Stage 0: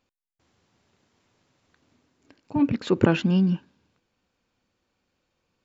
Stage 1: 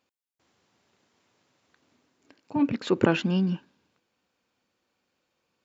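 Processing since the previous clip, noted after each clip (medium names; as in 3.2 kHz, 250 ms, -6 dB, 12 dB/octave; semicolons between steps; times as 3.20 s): high-pass 240 Hz 6 dB/octave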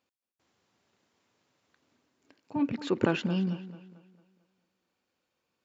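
tape echo 222 ms, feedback 45%, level -13.5 dB, low-pass 3.8 kHz; trim -4.5 dB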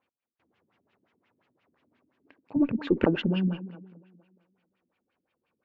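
Chebyshev shaper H 4 -20 dB, 7 -31 dB, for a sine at -10 dBFS; LFO low-pass sine 5.7 Hz 230–2900 Hz; trim +2.5 dB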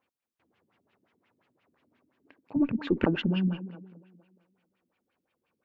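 dynamic bell 490 Hz, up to -5 dB, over -38 dBFS, Q 1.4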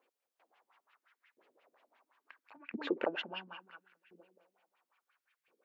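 compression 2.5:1, threshold -32 dBFS, peak gain reduction 9.5 dB; LFO high-pass saw up 0.73 Hz 390–2000 Hz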